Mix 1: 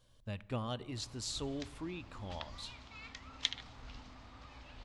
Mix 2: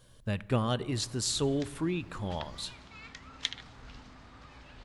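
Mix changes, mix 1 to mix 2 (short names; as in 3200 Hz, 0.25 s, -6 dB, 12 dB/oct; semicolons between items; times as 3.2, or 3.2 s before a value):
speech +7.0 dB; master: add fifteen-band EQ 160 Hz +7 dB, 400 Hz +5 dB, 1600 Hz +5 dB, 10000 Hz +8 dB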